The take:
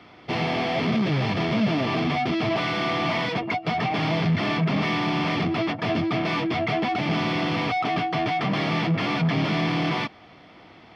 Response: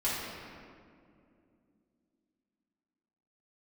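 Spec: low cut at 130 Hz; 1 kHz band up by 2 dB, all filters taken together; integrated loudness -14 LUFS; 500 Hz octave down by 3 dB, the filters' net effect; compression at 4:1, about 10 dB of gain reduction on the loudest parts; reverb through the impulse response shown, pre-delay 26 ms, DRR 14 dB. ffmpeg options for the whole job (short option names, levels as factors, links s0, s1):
-filter_complex "[0:a]highpass=130,equalizer=f=500:t=o:g=-7.5,equalizer=f=1000:t=o:g=6,acompressor=threshold=0.0224:ratio=4,asplit=2[s0][s1];[1:a]atrim=start_sample=2205,adelay=26[s2];[s1][s2]afir=irnorm=-1:irlink=0,volume=0.075[s3];[s0][s3]amix=inputs=2:normalize=0,volume=10"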